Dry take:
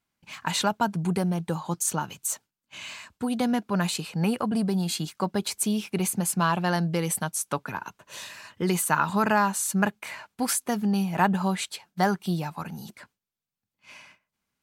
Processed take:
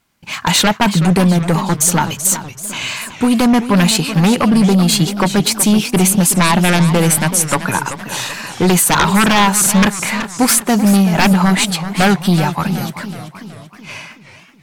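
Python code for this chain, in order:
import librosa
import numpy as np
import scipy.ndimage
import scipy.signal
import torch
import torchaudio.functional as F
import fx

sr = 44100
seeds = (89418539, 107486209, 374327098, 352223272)

y = fx.fold_sine(x, sr, drive_db=13, ceiling_db=-7.5)
y = fx.echo_warbled(y, sr, ms=379, feedback_pct=51, rate_hz=2.8, cents=165, wet_db=-11.5)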